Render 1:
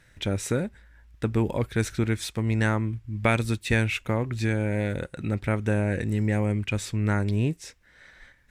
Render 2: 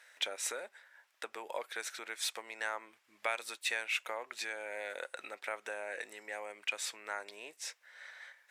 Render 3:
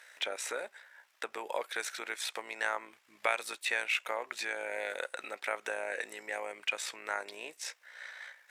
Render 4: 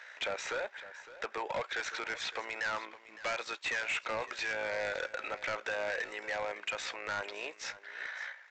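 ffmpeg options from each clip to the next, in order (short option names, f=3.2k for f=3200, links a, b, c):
-af "acompressor=threshold=-28dB:ratio=6,highpass=f=600:w=0.5412,highpass=f=600:w=1.3066,volume=1dB"
-filter_complex "[0:a]acrossover=split=2900[a][b];[b]alimiter=level_in=10.5dB:limit=-24dB:level=0:latency=1:release=146,volume=-10.5dB[c];[a][c]amix=inputs=2:normalize=0,tremolo=f=59:d=0.462,volume=6.5dB"
-filter_complex "[0:a]asplit=2[a][b];[b]highpass=f=720:p=1,volume=19dB,asoftclip=type=tanh:threshold=-14dB[c];[a][c]amix=inputs=2:normalize=0,lowpass=f=1.7k:p=1,volume=-6dB,aresample=16000,asoftclip=type=hard:threshold=-26.5dB,aresample=44100,aecho=1:1:560:0.158,volume=-4dB"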